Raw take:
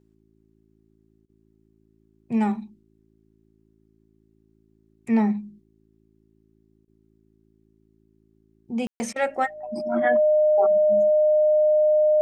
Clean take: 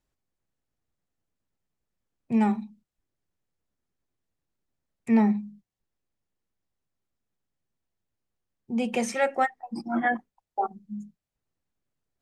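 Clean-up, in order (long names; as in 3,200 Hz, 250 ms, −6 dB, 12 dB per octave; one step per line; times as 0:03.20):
hum removal 54.5 Hz, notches 7
notch filter 610 Hz, Q 30
ambience match 0:08.87–0:09.00
repair the gap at 0:01.26/0:06.85/0:09.13, 28 ms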